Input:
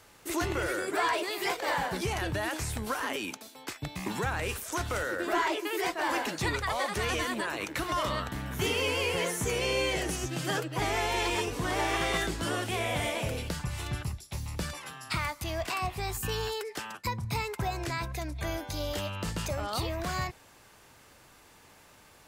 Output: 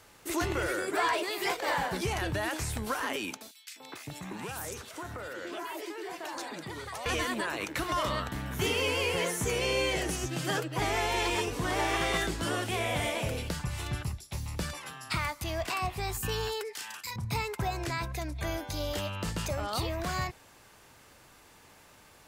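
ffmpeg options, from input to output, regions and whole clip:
-filter_complex "[0:a]asettb=1/sr,asplit=3[s0][s1][s2];[s0]atrim=end=3.514[s3];[s1]atrim=start=3.51:end=7.06,asetpts=PTS-STARTPTS,afade=t=in:d=0.004:c=qsin,afade=t=out:st=3.546:d=0.004:c=qsin,highpass=100,acompressor=threshold=0.0178:ratio=6:attack=3.2:release=140:knee=1:detection=peak,acrossover=split=2100[s4][s5];[s4]adelay=250[s6];[s6][s5]amix=inputs=2:normalize=0,atrim=end_sample=156555[s7];[s2]atrim=start=7.056[s8];[s3][s7]acrossfade=d=0.004:c1=hsin:c2=qsin[s9];[s9][s8]acrossfade=d=0.004:c1=qsin:c2=hsin,asettb=1/sr,asplit=3[s10][s11][s12];[s10]atrim=end=16.734[s13];[s11]atrim=start=16.73:end=17.16,asetpts=PTS-STARTPTS,afade=t=in:d=0.004:c=qsin,afade=t=out:st=0.426:d=0.004:c=qsin,tiltshelf=f=1300:g=-10,acompressor=threshold=0.00891:ratio=2.5:attack=3.2:release=140:knee=1:detection=peak,asplit=2[s14][s15];[s15]adelay=35,volume=0.794[s16];[s14][s16]amix=inputs=2:normalize=0,atrim=end_sample=18963[s17];[s12]atrim=start=17.156[s18];[s13][s17]acrossfade=d=0.004:c1=hsin:c2=qsin[s19];[s19][s18]acrossfade=d=0.004:c1=qsin:c2=hsin"

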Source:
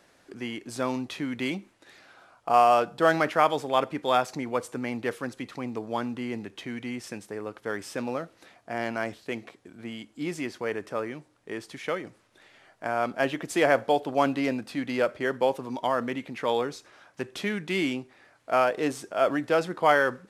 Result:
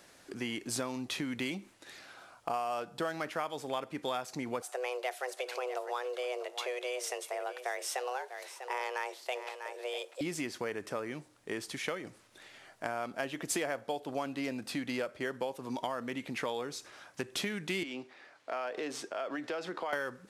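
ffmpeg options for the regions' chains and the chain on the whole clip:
-filter_complex "[0:a]asettb=1/sr,asplit=3[s0][s1][s2];[s0]atrim=end=4.624[s3];[s1]atrim=start=4.62:end=10.21,asetpts=PTS-STARTPTS,afade=t=in:d=0.004:c=qsin,afade=t=out:st=5.586:d=0.004:c=qsin,afreqshift=250,aecho=1:1:646:0.2,atrim=end_sample=246519[s4];[s2]atrim=start=10.206[s5];[s3][s4]acrossfade=d=0.004:c1=hsin:c2=qsin[s6];[s6][s5]acrossfade=d=0.004:c1=qsin:c2=hsin,asettb=1/sr,asplit=3[s7][s8][s9];[s7]atrim=end=17.834[s10];[s8]atrim=start=17.83:end=19.93,asetpts=PTS-STARTPTS,afade=t=in:d=0.004:c=qsin,afade=t=out:st=2.096:d=0.004:c=qsin,highpass=56,acrossover=split=250 5800:gain=0.2 1 0.178[s11][s12][s13];[s11][s12][s13]amix=inputs=3:normalize=0,acompressor=threshold=0.02:ratio=3:attack=3.2:release=140:knee=1:detection=peak[s14];[s9]atrim=start=19.926[s15];[s10][s14]acrossfade=d=0.004:c1=hsin:c2=qsin[s16];[s16][s15]acrossfade=d=0.004:c1=qsin:c2=hsin,acompressor=threshold=0.0224:ratio=6,highshelf=f=3800:g=7.5"

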